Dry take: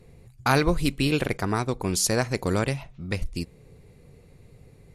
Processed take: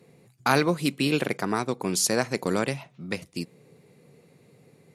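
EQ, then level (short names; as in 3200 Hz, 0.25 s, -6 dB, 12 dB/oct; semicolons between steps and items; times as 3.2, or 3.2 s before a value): HPF 150 Hz 24 dB/oct; 0.0 dB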